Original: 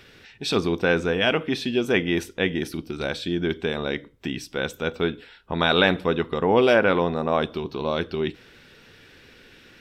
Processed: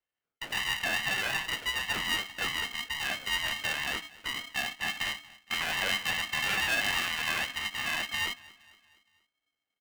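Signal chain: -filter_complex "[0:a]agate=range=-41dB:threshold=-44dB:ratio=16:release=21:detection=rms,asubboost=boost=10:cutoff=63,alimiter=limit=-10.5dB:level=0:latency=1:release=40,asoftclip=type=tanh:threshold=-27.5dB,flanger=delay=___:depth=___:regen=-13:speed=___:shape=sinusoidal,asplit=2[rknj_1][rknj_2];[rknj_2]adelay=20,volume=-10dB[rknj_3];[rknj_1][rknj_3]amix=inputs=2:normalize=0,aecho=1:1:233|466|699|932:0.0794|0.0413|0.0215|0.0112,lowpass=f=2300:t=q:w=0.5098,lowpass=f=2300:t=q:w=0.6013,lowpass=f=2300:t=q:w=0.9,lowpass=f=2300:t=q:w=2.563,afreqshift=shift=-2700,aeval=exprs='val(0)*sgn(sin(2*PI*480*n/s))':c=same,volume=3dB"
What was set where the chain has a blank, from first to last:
1.7, 9.3, 1.1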